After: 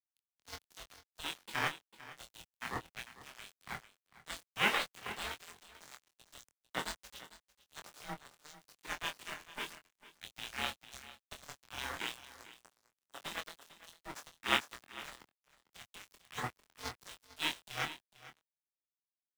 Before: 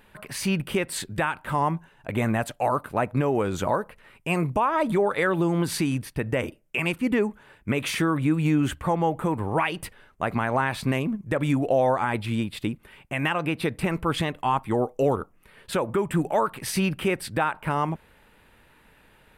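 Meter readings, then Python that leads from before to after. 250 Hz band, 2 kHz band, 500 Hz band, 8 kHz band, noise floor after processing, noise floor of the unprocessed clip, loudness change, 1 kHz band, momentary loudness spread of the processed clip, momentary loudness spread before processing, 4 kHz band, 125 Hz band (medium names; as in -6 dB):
-27.0 dB, -9.5 dB, -25.0 dB, -11.5 dB, under -85 dBFS, -58 dBFS, -14.5 dB, -17.0 dB, 20 LU, 7 LU, -4.5 dB, -27.0 dB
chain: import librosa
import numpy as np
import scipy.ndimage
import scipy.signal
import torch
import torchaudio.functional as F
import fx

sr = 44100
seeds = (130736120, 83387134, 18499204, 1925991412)

p1 = scipy.signal.sosfilt(scipy.signal.butter(4, 890.0, 'highpass', fs=sr, output='sos'), x)
p2 = fx.spec_gate(p1, sr, threshold_db=-25, keep='weak')
p3 = scipy.signal.sosfilt(scipy.signal.butter(4, 7500.0, 'lowpass', fs=sr, output='sos'), p2)
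p4 = fx.high_shelf(p3, sr, hz=3200.0, db=-12.0)
p5 = fx.quant_companded(p4, sr, bits=4)
p6 = p4 + F.gain(torch.from_numpy(p5), -9.0).numpy()
p7 = np.sign(p6) * np.maximum(np.abs(p6) - 10.0 ** (-56.5 / 20.0), 0.0)
p8 = p7 * np.sin(2.0 * np.pi * 310.0 * np.arange(len(p7)) / sr)
p9 = fx.doubler(p8, sr, ms=24.0, db=-6.0)
p10 = p9 + fx.echo_single(p9, sr, ms=450, db=-10.5, dry=0)
p11 = fx.band_widen(p10, sr, depth_pct=70)
y = F.gain(torch.from_numpy(p11), 15.0).numpy()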